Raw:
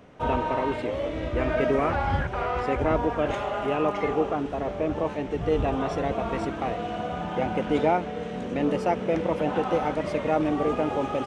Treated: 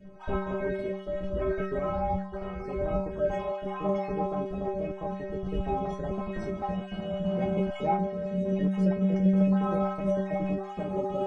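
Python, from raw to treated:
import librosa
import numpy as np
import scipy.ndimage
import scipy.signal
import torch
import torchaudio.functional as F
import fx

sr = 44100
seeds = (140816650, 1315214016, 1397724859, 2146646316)

y = fx.spec_dropout(x, sr, seeds[0], share_pct=22)
y = fx.tilt_eq(y, sr, slope=-3.5)
y = fx.rider(y, sr, range_db=10, speed_s=2.0)
y = fx.bass_treble(y, sr, bass_db=1, treble_db=5)
y = fx.stiff_resonator(y, sr, f0_hz=190.0, decay_s=0.58, stiffness=0.008)
y = y * librosa.db_to_amplitude(9.0)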